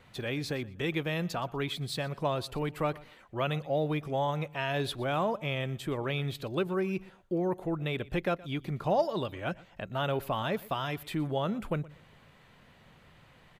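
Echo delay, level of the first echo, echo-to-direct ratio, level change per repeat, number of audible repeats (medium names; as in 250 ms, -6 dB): 120 ms, -21.0 dB, -21.0 dB, -12.5 dB, 2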